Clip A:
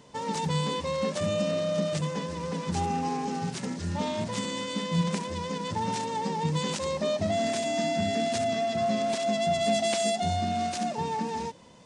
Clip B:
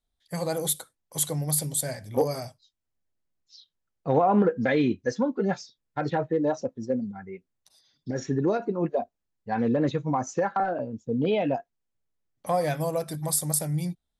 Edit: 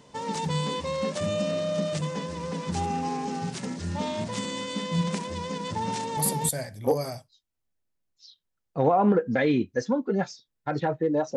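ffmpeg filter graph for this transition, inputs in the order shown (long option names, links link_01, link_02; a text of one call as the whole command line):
ffmpeg -i cue0.wav -i cue1.wav -filter_complex "[0:a]apad=whole_dur=11.36,atrim=end=11.36,atrim=end=6.49,asetpts=PTS-STARTPTS[link_01];[1:a]atrim=start=1.47:end=6.66,asetpts=PTS-STARTPTS[link_02];[link_01][link_02]acrossfade=duration=0.32:curve1=log:curve2=log" out.wav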